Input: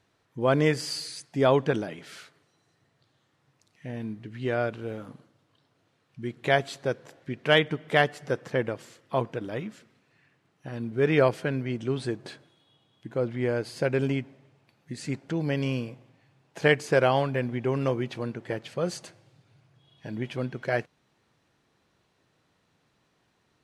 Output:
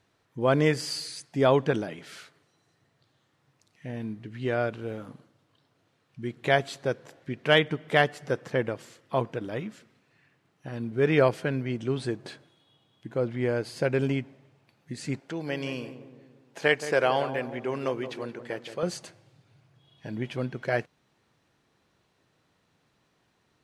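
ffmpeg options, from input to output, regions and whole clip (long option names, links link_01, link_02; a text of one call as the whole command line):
ffmpeg -i in.wav -filter_complex "[0:a]asettb=1/sr,asplit=3[link_01][link_02][link_03];[link_01]atrim=end=15.204[link_04];[link_02]atrim=start=15.2:end=18.83,asetpts=PTS-STARTPTS,afade=type=in:duration=0.004:curve=qsin,afade=type=out:start_time=3.626:duration=0.004:curve=qsin,highpass=frequency=430:poles=1,asplit=2[link_05][link_06];[link_06]adelay=173,lowpass=frequency=1100:poles=1,volume=-10dB,asplit=2[link_07][link_08];[link_08]adelay=173,lowpass=frequency=1100:poles=1,volume=0.54,asplit=2[link_09][link_10];[link_10]adelay=173,lowpass=frequency=1100:poles=1,volume=0.54,asplit=2[link_11][link_12];[link_12]adelay=173,lowpass=frequency=1100:poles=1,volume=0.54,asplit=2[link_13][link_14];[link_14]adelay=173,lowpass=frequency=1100:poles=1,volume=0.54,asplit=2[link_15][link_16];[link_16]adelay=173,lowpass=frequency=1100:poles=1,volume=0.54[link_17];[link_05][link_07][link_09][link_11][link_13][link_15][link_17]amix=inputs=7:normalize=0,atrim=end_sample=160083[link_18];[link_03]atrim=start=18.826[link_19];[link_04][link_18]acrossfade=duration=0.004:curve1=hsin:curve2=qsin[link_20];[link_20][link_19]acrossfade=duration=0.004:curve1=qsin:curve2=hsin" out.wav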